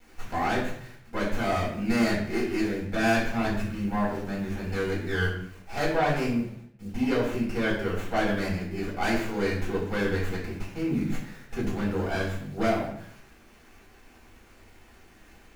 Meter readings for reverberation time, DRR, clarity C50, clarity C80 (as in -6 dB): 0.60 s, -8.0 dB, 4.5 dB, 7.5 dB